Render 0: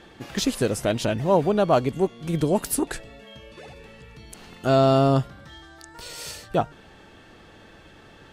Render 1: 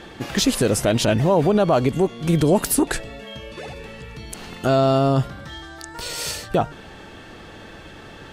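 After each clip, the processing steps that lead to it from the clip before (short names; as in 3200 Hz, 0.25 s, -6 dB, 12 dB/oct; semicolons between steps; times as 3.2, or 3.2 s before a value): limiter -17 dBFS, peak gain reduction 9 dB; gain +8.5 dB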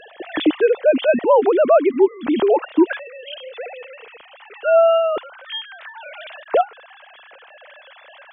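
sine-wave speech; gain +2.5 dB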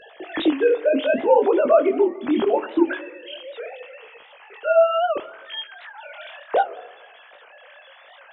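chorus 0.71 Hz, delay 17 ms, depth 7.9 ms; reverb RT60 1.1 s, pre-delay 18 ms, DRR 14 dB; record warp 78 rpm, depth 160 cents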